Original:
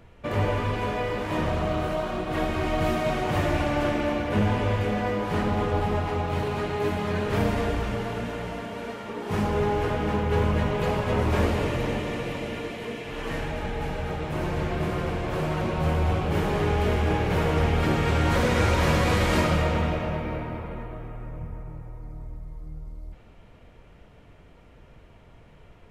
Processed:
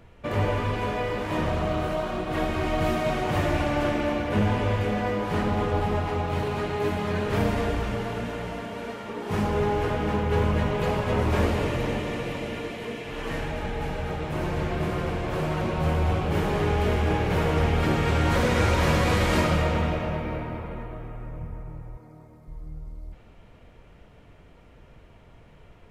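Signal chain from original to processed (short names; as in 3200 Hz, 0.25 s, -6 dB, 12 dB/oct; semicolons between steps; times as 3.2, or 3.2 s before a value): 21.97–22.48 HPF 170 Hz 12 dB/oct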